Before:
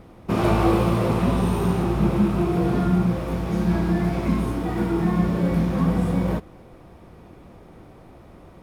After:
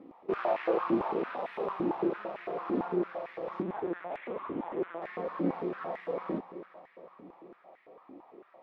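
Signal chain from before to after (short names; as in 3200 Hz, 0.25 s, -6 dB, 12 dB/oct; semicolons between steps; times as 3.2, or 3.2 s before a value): notch 1500 Hz, Q 6.6; one-sided clip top -28 dBFS; flange 0.74 Hz, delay 3.7 ms, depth 2.5 ms, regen -47%; 3.62–5.02 LPC vocoder at 8 kHz pitch kept; air absorption 340 m; multi-head echo 0.137 s, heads second and third, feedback 60%, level -16.5 dB; stepped high-pass 8.9 Hz 290–1900 Hz; gain -4.5 dB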